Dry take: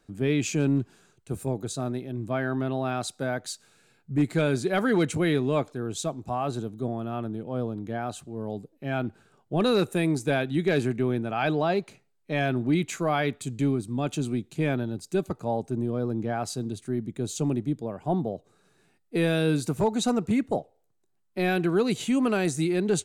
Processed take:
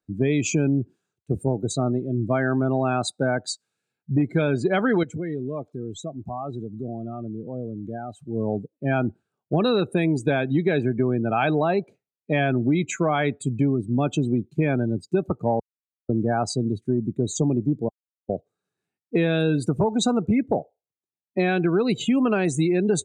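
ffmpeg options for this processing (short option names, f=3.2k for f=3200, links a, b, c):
-filter_complex "[0:a]asettb=1/sr,asplit=3[a][b][c];[a]atrim=end=5.034[d];[b]atrim=start=5.03:end=8.29,asetpts=PTS-STARTPTS,afade=t=in:d=0.004:c=qsin,afade=t=out:st=3.256:d=0.004:c=qsin,acompressor=threshold=-38dB:ratio=3:attack=3.2:release=140:knee=1:detection=peak[e];[c]atrim=start=8.286[f];[d][e]acrossfade=d=0.004:c1=hsin:c2=qsin[g];[g][f]acrossfade=d=0.004:c1=qsin:c2=hsin,asplit=5[h][i][j][k][l];[h]atrim=end=15.6,asetpts=PTS-STARTPTS,afade=t=out:st=15.596:d=0.004:c=hsin[m];[i]atrim=start=15.6:end=16.09,asetpts=PTS-STARTPTS,volume=0[n];[j]atrim=start=16.09:end=17.89,asetpts=PTS-STARTPTS,afade=t=in:d=0.004:c=hsin,afade=t=out:st=1.796:d=0.004:c=hsin[o];[k]atrim=start=17.89:end=18.29,asetpts=PTS-STARTPTS,volume=0[p];[l]atrim=start=18.29,asetpts=PTS-STARTPTS,afade=t=in:d=0.004:c=hsin[q];[m][n][o][p][q]concat=n=5:v=0:a=1,afftdn=nr=28:nf=-36,highpass=45,acompressor=threshold=-26dB:ratio=6,volume=8.5dB"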